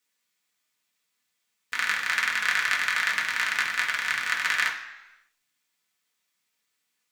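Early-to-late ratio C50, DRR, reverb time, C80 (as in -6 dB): 7.5 dB, -3.0 dB, 1.0 s, 10.5 dB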